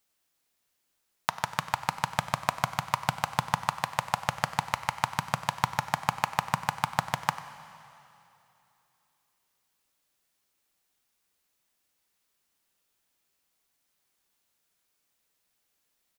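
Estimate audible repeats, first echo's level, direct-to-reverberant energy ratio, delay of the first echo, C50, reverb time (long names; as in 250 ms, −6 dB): 1, −15.5 dB, 10.5 dB, 95 ms, 11.0 dB, 2.9 s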